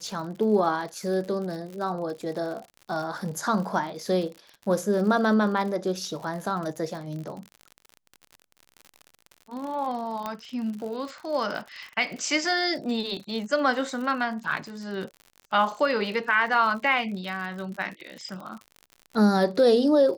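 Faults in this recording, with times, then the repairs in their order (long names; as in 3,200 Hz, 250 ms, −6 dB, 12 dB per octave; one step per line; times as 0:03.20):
surface crackle 60 per second −34 dBFS
0:10.26: click −17 dBFS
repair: click removal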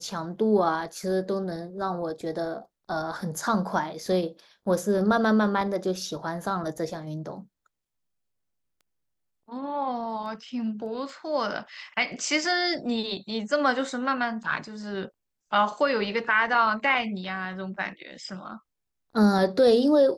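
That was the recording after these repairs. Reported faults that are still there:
0:10.26: click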